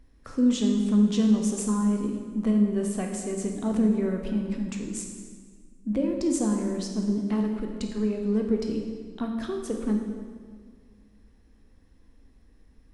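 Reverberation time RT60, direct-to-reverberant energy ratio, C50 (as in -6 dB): 1.7 s, 2.0 dB, 4.0 dB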